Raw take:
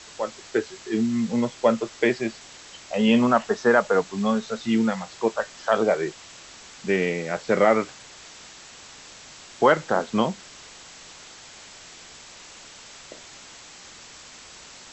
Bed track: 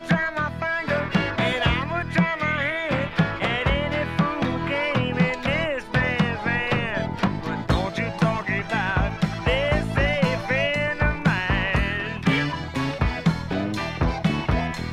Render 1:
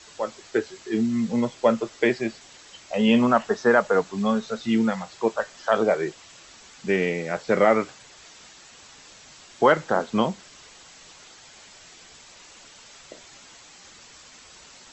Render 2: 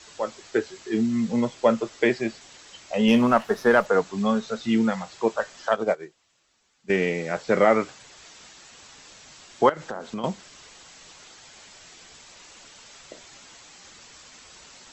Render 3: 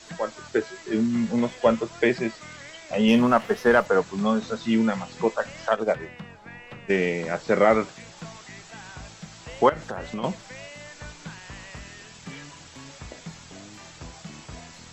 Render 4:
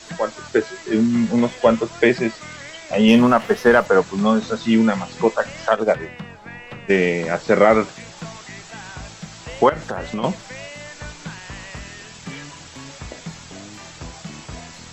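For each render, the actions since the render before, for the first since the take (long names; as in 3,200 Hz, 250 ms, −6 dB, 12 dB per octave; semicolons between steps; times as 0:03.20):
broadband denoise 6 dB, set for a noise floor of −46 dBFS
0:03.08–0:03.86: windowed peak hold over 3 samples; 0:05.69–0:06.90: expander for the loud parts 2.5 to 1, over −30 dBFS; 0:09.69–0:10.24: downward compressor 8 to 1, threshold −28 dBFS
mix in bed track −19.5 dB
level +6 dB; brickwall limiter −3 dBFS, peak gain reduction 3 dB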